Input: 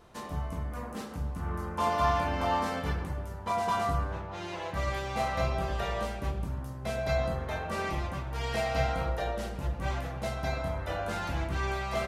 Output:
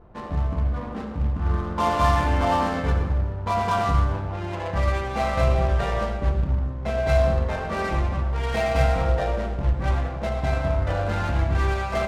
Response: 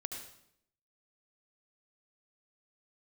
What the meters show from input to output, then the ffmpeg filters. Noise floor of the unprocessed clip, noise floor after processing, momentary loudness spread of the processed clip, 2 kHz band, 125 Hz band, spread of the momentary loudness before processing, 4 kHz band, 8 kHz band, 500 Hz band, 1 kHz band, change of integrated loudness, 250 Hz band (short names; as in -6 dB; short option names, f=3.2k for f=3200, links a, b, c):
-40 dBFS, -32 dBFS, 6 LU, +5.5 dB, +10.5 dB, 8 LU, +3.5 dB, +2.5 dB, +7.5 dB, +6.0 dB, +8.0 dB, +8.0 dB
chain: -filter_complex "[0:a]acrusher=bits=4:mode=log:mix=0:aa=0.000001,adynamicsmooth=sensitivity=8:basefreq=980,asplit=2[a][b];[1:a]atrim=start_sample=2205,lowshelf=f=93:g=11.5[c];[b][c]afir=irnorm=-1:irlink=0,volume=2.5dB[d];[a][d]amix=inputs=2:normalize=0"